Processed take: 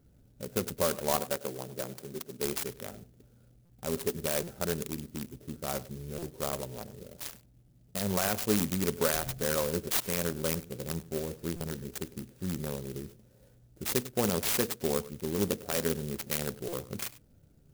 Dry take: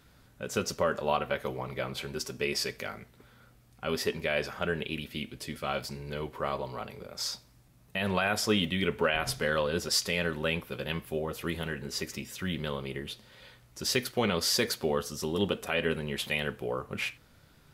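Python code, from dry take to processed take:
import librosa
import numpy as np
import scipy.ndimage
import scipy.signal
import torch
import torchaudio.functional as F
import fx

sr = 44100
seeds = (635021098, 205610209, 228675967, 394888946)

p1 = fx.wiener(x, sr, points=41)
p2 = fx.bessel_highpass(p1, sr, hz=180.0, order=2, at=(1.2, 2.45))
p3 = p2 + fx.echo_single(p2, sr, ms=100, db=-18.0, dry=0)
p4 = fx.buffer_glitch(p3, sr, at_s=(3.65, 4.43, 6.18, 11.56, 16.68), block=256, repeats=7)
y = fx.clock_jitter(p4, sr, seeds[0], jitter_ms=0.12)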